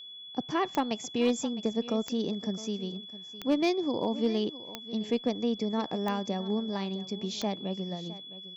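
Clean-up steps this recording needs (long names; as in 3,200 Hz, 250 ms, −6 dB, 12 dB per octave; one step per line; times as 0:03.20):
clipped peaks rebuilt −18.5 dBFS
click removal
notch filter 3,400 Hz, Q 30
echo removal 660 ms −16.5 dB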